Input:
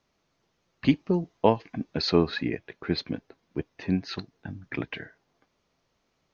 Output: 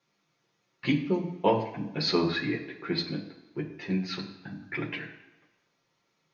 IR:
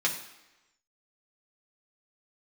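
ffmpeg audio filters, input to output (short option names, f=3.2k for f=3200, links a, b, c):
-filter_complex "[1:a]atrim=start_sample=2205[a];[0:a][a]afir=irnorm=-1:irlink=0,volume=-8.5dB"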